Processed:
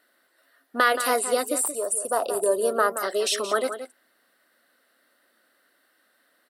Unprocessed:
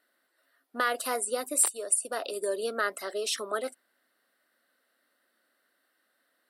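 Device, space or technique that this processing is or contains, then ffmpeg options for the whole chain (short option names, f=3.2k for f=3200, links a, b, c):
de-esser from a sidechain: -filter_complex "[0:a]asettb=1/sr,asplit=3[a][b][c];[a]atrim=end=1.624[d];[b]atrim=start=1.62:end=3.03,asetpts=PTS-STARTPTS,afade=t=in:d=0.004:c=qsin,afade=t=out:st=1.406:d=0.004:c=qsin,equalizer=f=125:t=o:w=1:g=9,equalizer=f=250:t=o:w=1:g=-4,equalizer=f=1k:t=o:w=1:g=8,equalizer=f=2k:t=o:w=1:g=-11,equalizer=f=4k:t=o:w=1:g=-10,equalizer=f=16k:t=o:w=1:g=8[e];[c]atrim=start=3.026[f];[d][e]acrossfade=d=0.004:c1=hsin:c2=qsin[g];[g][f]acrossfade=d=0.004:c1=qsin:c2=hsin,asplit=2[h][i];[i]highpass=6k,apad=whole_len=286378[j];[h][j]sidechaincompress=threshold=-32dB:ratio=4:attack=2.2:release=32,asplit=2[k][l];[l]adelay=174.9,volume=-10dB,highshelf=f=4k:g=-3.94[m];[k][m]amix=inputs=2:normalize=0,volume=7.5dB"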